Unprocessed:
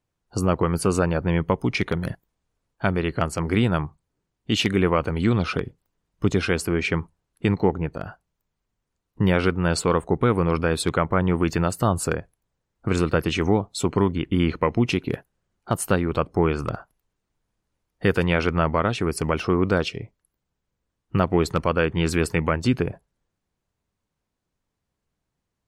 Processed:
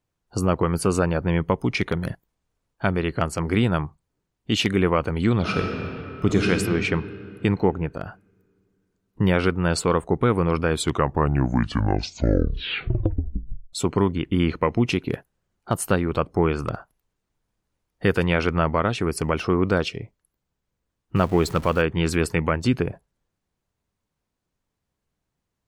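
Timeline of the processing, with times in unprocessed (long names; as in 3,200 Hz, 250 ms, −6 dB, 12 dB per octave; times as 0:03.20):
0:05.36–0:06.49: thrown reverb, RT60 2.9 s, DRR 1 dB
0:10.65: tape stop 3.08 s
0:21.16–0:21.82: converter with a step at zero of −35 dBFS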